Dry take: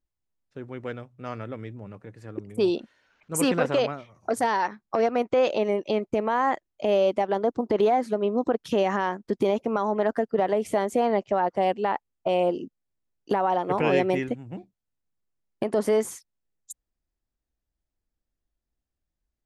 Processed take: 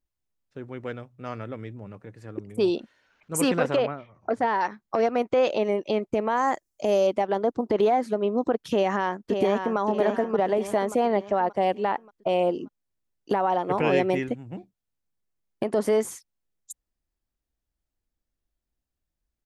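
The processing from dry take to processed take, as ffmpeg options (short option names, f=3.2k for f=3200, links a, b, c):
-filter_complex "[0:a]asettb=1/sr,asplit=3[a][b][c];[a]atrim=end=3.764[d];[b]atrim=start=3.76:end=4.61,asetpts=PTS-STARTPTS,afade=t=in:d=0.004:c=qsin,afade=t=out:st=0.846:d=0.004:c=qsin,lowpass=2.6k[e];[c]atrim=start=4.606[f];[d][e]acrossfade=d=0.004:c1=hsin:c2=qsin[g];[g][f]acrossfade=d=0.004:c1=qsin:c2=hsin,asettb=1/sr,asplit=3[h][i][j];[h]atrim=end=6.374[k];[i]atrim=start=6.37:end=7.07,asetpts=PTS-STARTPTS,afade=t=in:d=0.004:c=qsin,afade=t=out:st=0.696:d=0.004:c=qsin,highshelf=f=4.6k:t=q:w=1.5:g=9[l];[j]atrim=start=7.066[m];[k][l]acrossfade=d=0.004:c1=hsin:c2=qsin[n];[n][m]acrossfade=d=0.004:c1=qsin:c2=hsin,asplit=2[o][p];[p]afade=t=in:st=8.71:d=0.01,afade=t=out:st=9.78:d=0.01,aecho=0:1:580|1160|1740|2320|2900:0.501187|0.225534|0.10149|0.0456707|0.0205518[q];[o][q]amix=inputs=2:normalize=0"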